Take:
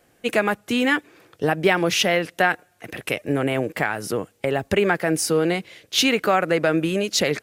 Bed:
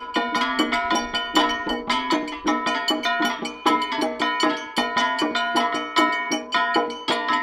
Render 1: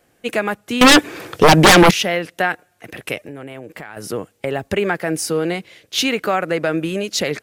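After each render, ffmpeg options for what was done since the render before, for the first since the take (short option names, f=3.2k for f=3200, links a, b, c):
-filter_complex "[0:a]asettb=1/sr,asplit=3[a][b][c];[a]atrim=end=0.814[d];[b]atrim=start=0.81:end=1.91,asetpts=PTS-STARTPTS,afade=t=in:d=0.004:c=qsin,afade=t=out:st=1.096:d=0.004:c=qsin,aeval=exprs='0.596*sin(PI/2*5.62*val(0)/0.596)':c=same[e];[c]atrim=start=1.906[f];[d][e]acrossfade=d=0.004:c1=hsin:c2=qsin[g];[g][f]acrossfade=d=0.004:c1=qsin:c2=hsin,asettb=1/sr,asplit=3[h][i][j];[h]atrim=end=3.264[k];[i]atrim=start=3.26:end=3.97,asetpts=PTS-STARTPTS,afade=t=in:d=0.004:c=qsin,afade=t=out:st=0.706:d=0.004:c=qsin,acompressor=threshold=-31dB:ratio=4:attack=3.2:release=140:knee=1:detection=peak[l];[j]atrim=start=3.966[m];[k][l]acrossfade=d=0.004:c1=hsin:c2=qsin[n];[n][m]acrossfade=d=0.004:c1=qsin:c2=hsin"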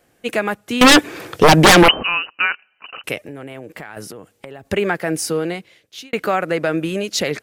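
-filter_complex "[0:a]asettb=1/sr,asplit=3[a][b][c];[a]atrim=end=1.884[d];[b]atrim=start=1.88:end=3.04,asetpts=PTS-STARTPTS,afade=t=in:d=0.004:c=qsin,afade=t=out:st=1.156:d=0.004:c=qsin,lowpass=f=2.6k:t=q:w=0.5098,lowpass=f=2.6k:t=q:w=0.6013,lowpass=f=2.6k:t=q:w=0.9,lowpass=f=2.6k:t=q:w=2.563,afreqshift=-3100[e];[c]atrim=start=3.036[f];[d][e]acrossfade=d=0.004:c1=hsin:c2=qsin[g];[g][f]acrossfade=d=0.004:c1=qsin:c2=hsin,asettb=1/sr,asplit=3[h][i][j];[h]atrim=end=4.034[k];[i]atrim=start=4.03:end=4.7,asetpts=PTS-STARTPTS,afade=t=in:d=0.004:c=qsin,afade=t=out:st=0.666:d=0.004:c=qsin,acompressor=threshold=-31dB:ratio=10:attack=3.2:release=140:knee=1:detection=peak[l];[j]atrim=start=4.696[m];[k][l]acrossfade=d=0.004:c1=hsin:c2=qsin[n];[n][m]acrossfade=d=0.004:c1=qsin:c2=hsin,asplit=2[o][p];[o]atrim=end=6.13,asetpts=PTS-STARTPTS,afade=t=out:st=5.27:d=0.86[q];[p]atrim=start=6.13,asetpts=PTS-STARTPTS,afade=t=in:d=0.004:c=hsin[r];[q][r]concat=n=2:v=0:a=1"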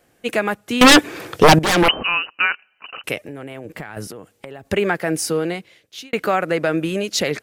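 -filter_complex "[0:a]asettb=1/sr,asplit=3[a][b][c];[a]atrim=end=3.654[d];[b]atrim=start=3.65:end=4.07,asetpts=PTS-STARTPTS,afade=t=in:d=0.004:c=qsin,afade=t=out:st=0.416:d=0.004:c=qsin,lowshelf=f=180:g=9[e];[c]atrim=start=4.066[f];[d][e]acrossfade=d=0.004:c1=hsin:c2=qsin[g];[g][f]acrossfade=d=0.004:c1=qsin:c2=hsin,asplit=2[h][i];[h]atrim=end=1.59,asetpts=PTS-STARTPTS,afade=t=out:st=1.586:d=0.004:c=hsin:silence=0.16788[j];[i]atrim=start=1.59,asetpts=PTS-STARTPTS,afade=t=in:d=0.52:silence=0.16788[k];[j][k]concat=n=2:v=0:a=1"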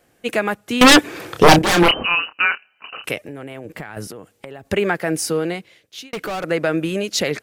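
-filter_complex "[0:a]asettb=1/sr,asplit=3[a][b][c];[a]atrim=end=1.254[d];[b]atrim=start=1.25:end=3.11,asetpts=PTS-STARTPTS,afade=t=in:d=0.004:c=qsin,afade=t=out:st=1.856:d=0.004:c=qsin,asplit=2[e][f];[f]adelay=29,volume=-7dB[g];[e][g]amix=inputs=2:normalize=0,atrim=end_sample=82026[h];[c]atrim=start=3.106[i];[d][h]acrossfade=d=0.004:c1=hsin:c2=qsin[j];[j][i]acrossfade=d=0.004:c1=qsin:c2=hsin,asettb=1/sr,asplit=3[k][l][m];[k]atrim=end=6.034[n];[l]atrim=start=6.03:end=6.44,asetpts=PTS-STARTPTS,afade=t=in:d=0.004:c=qsin,afade=t=out:st=0.406:d=0.004:c=qsin,volume=23.5dB,asoftclip=hard,volume=-23.5dB[o];[m]atrim=start=6.436[p];[n][o]acrossfade=d=0.004:c1=hsin:c2=qsin[q];[q][p]acrossfade=d=0.004:c1=qsin:c2=hsin"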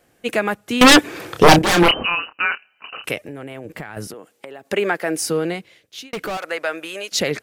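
-filter_complex "[0:a]asettb=1/sr,asplit=3[a][b][c];[a]atrim=end=2.104[d];[b]atrim=start=2.1:end=2.52,asetpts=PTS-STARTPTS,afade=t=in:d=0.004:c=qsin,afade=t=out:st=0.416:d=0.004:c=qsin,equalizer=f=6.5k:w=0.49:g=-9.5[e];[c]atrim=start=2.516[f];[d][e]acrossfade=d=0.004:c1=hsin:c2=qsin[g];[g][f]acrossfade=d=0.004:c1=qsin:c2=hsin,asettb=1/sr,asplit=3[h][i][j];[h]atrim=end=4.144[k];[i]atrim=start=4.14:end=5.21,asetpts=PTS-STARTPTS,afade=t=in:d=0.004:c=qsin,afade=t=out:st=1.066:d=0.004:c=qsin,highpass=260[l];[j]atrim=start=5.206[m];[k][l]acrossfade=d=0.004:c1=hsin:c2=qsin[n];[n][m]acrossfade=d=0.004:c1=qsin:c2=hsin,asettb=1/sr,asplit=3[o][p][q];[o]atrim=end=6.374[r];[p]atrim=start=6.37:end=7.12,asetpts=PTS-STARTPTS,afade=t=in:d=0.004:c=qsin,afade=t=out:st=0.746:d=0.004:c=qsin,highpass=700[s];[q]atrim=start=7.116[t];[r][s]acrossfade=d=0.004:c1=hsin:c2=qsin[u];[u][t]acrossfade=d=0.004:c1=qsin:c2=hsin"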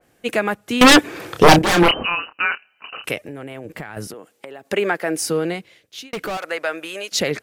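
-af "adynamicequalizer=threshold=0.0398:dfrequency=2600:dqfactor=0.7:tfrequency=2600:tqfactor=0.7:attack=5:release=100:ratio=0.375:range=2:mode=cutabove:tftype=highshelf"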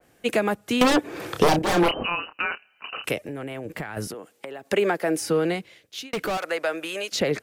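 -filter_complex "[0:a]acrossover=split=370|960|3400[a][b][c][d];[a]acompressor=threshold=-24dB:ratio=4[e];[b]acompressor=threshold=-20dB:ratio=4[f];[c]acompressor=threshold=-31dB:ratio=4[g];[d]acompressor=threshold=-32dB:ratio=4[h];[e][f][g][h]amix=inputs=4:normalize=0"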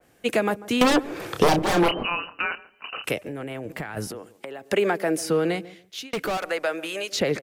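-filter_complex "[0:a]asplit=2[a][b];[b]adelay=143,lowpass=f=830:p=1,volume=-16dB,asplit=2[c][d];[d]adelay=143,lowpass=f=830:p=1,volume=0.25[e];[a][c][e]amix=inputs=3:normalize=0"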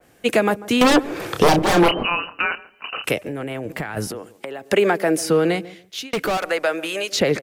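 -af "volume=5dB,alimiter=limit=-3dB:level=0:latency=1"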